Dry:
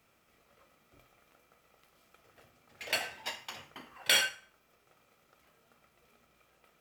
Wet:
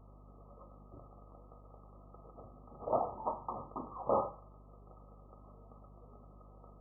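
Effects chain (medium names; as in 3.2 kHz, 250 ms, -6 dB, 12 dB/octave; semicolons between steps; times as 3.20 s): hum 50 Hz, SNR 26 dB; brick-wall FIR low-pass 1.3 kHz; trim +9 dB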